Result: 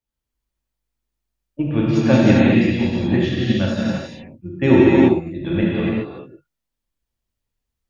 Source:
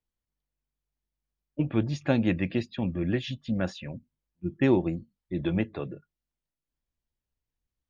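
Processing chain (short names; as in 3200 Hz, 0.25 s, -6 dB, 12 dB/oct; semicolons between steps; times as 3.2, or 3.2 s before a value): non-linear reverb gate 0.44 s flat, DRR -7.5 dB; upward expander 1.5:1, over -29 dBFS; gain +6 dB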